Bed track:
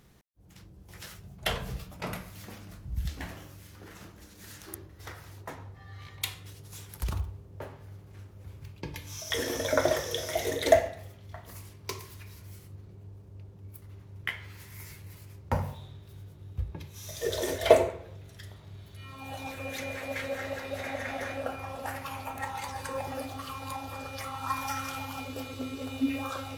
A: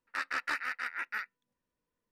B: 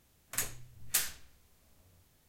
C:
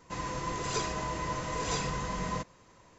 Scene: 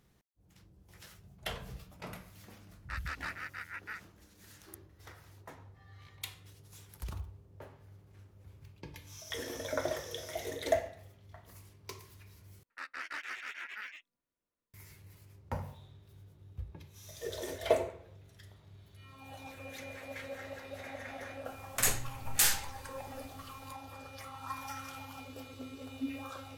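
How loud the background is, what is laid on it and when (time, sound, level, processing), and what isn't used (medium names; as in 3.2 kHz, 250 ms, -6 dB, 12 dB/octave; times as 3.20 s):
bed track -9 dB
2.75 s: add A -7 dB
12.63 s: replace with A -9 dB + ever faster or slower copies 249 ms, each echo +3 st, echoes 2
21.45 s: add B -11.5 dB + loudness maximiser +21 dB
not used: C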